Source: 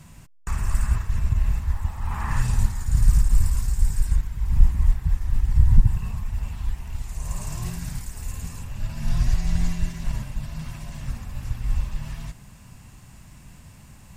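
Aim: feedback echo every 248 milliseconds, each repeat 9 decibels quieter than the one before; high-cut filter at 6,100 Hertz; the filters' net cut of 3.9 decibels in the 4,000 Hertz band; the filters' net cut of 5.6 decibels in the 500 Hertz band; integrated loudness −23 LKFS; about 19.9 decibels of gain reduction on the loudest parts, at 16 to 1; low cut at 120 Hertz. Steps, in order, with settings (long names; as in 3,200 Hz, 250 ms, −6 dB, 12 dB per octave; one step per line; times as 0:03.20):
high-pass filter 120 Hz
low-pass filter 6,100 Hz
parametric band 500 Hz −8 dB
parametric band 4,000 Hz −4 dB
downward compressor 16 to 1, threshold −41 dBFS
repeating echo 248 ms, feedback 35%, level −9 dB
level +24 dB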